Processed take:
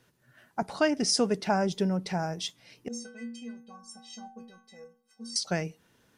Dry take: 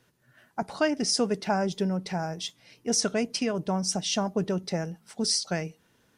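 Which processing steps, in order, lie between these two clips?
2.88–5.36 s: inharmonic resonator 230 Hz, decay 0.72 s, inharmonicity 0.03

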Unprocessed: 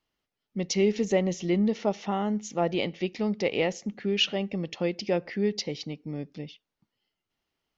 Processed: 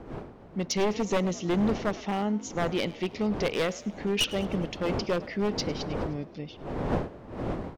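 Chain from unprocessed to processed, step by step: one-sided wavefolder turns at -21 dBFS; wind noise 480 Hz -37 dBFS; frequency-shifting echo 104 ms, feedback 61%, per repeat +52 Hz, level -20 dB

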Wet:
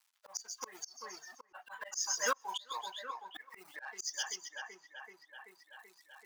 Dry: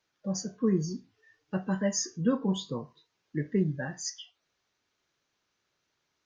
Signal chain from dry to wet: companding laws mixed up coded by A; Chebyshev high-pass 890 Hz, order 3; on a send: two-band feedback delay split 2.8 kHz, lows 383 ms, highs 130 ms, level -9 dB; on the sum: slow attack 355 ms; reverb removal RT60 1.6 s; reverse; upward compressor, threshold -58 dBFS; reverse; trim +13 dB

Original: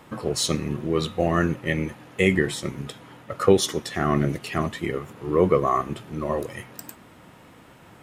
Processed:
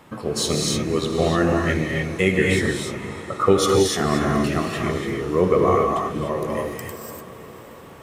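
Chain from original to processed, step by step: 2.79–3.46 s: resonant high shelf 1.6 kHz -10 dB, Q 3; on a send: echo that smears into a reverb 577 ms, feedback 56%, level -16 dB; on the sum: gated-style reverb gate 320 ms rising, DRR -1 dB

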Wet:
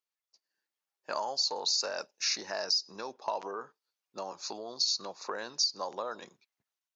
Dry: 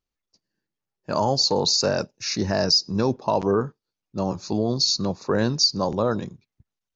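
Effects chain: compression 5:1, threshold -27 dBFS, peak gain reduction 11.5 dB; high-pass 730 Hz 12 dB/octave; level rider gain up to 5 dB; trim -4.5 dB

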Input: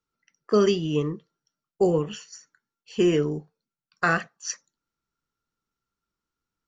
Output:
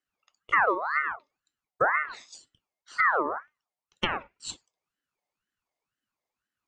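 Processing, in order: low-pass that closes with the level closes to 620 Hz, closed at -18.5 dBFS; ring modulator with a swept carrier 1.2 kHz, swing 40%, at 2 Hz

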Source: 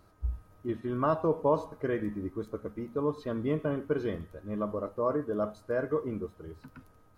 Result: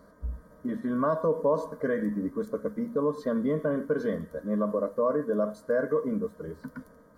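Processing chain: in parallel at +2 dB: peak limiter -25.5 dBFS, peak gain reduction 10.5 dB; on the sum: static phaser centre 530 Hz, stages 8; comb of notches 1.3 kHz; compression 1.5:1, threshold -39 dBFS, peak gain reduction 7 dB; tape noise reduction on one side only decoder only; trim +6.5 dB

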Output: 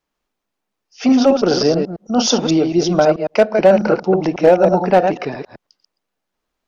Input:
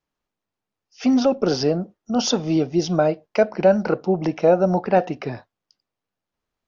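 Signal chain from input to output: chunks repeated in reverse 109 ms, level -5.5 dB; peaking EQ 100 Hz -9.5 dB 1.2 oct; overload inside the chain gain 9 dB; trim +5.5 dB

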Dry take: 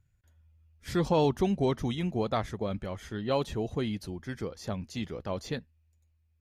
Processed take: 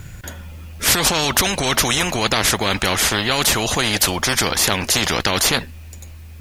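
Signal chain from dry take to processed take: loudness maximiser +25.5 dB; spectrum-flattening compressor 4:1; trim -1 dB

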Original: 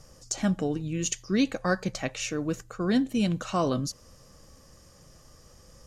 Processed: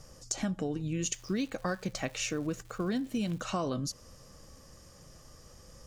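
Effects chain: compression 6:1, threshold -29 dBFS, peak gain reduction 10 dB; 1.13–3.40 s: crackle 370 per s -45 dBFS

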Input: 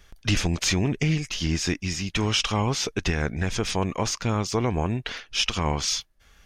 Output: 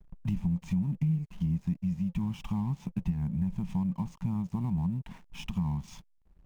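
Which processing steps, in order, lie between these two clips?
short-mantissa float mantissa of 2-bit; FFT filter 110 Hz 0 dB, 180 Hz +14 dB, 460 Hz -28 dB, 930 Hz +2 dB, 1.4 kHz -17 dB, 2.4 kHz -13 dB, 4.6 kHz -27 dB, 7.9 kHz -16 dB; compression 3:1, threshold -30 dBFS, peak gain reduction 14 dB; hysteresis with a dead band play -47.5 dBFS; dynamic bell 1.4 kHz, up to -7 dB, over -54 dBFS, Q 0.78

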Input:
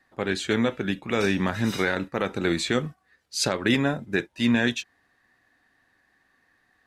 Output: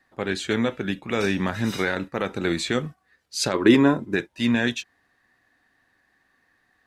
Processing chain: 3.53–4.13 s: small resonant body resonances 340/1000 Hz, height 11 dB -> 13 dB, ringing for 20 ms

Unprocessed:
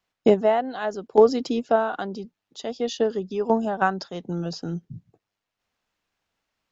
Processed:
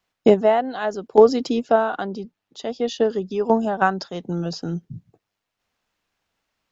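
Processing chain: 1.96–3.02 s: treble shelf 5.3 kHz -6 dB; trim +3 dB

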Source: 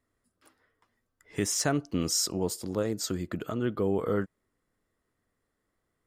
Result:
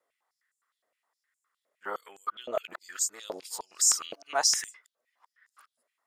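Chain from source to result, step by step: reverse the whole clip; step-sequenced high-pass 9.7 Hz 600–7200 Hz; trim -1.5 dB

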